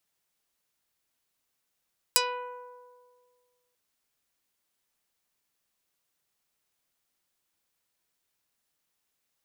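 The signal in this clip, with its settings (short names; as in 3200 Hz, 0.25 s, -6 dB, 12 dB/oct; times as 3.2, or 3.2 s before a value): plucked string B4, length 1.59 s, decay 1.90 s, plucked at 0.24, dark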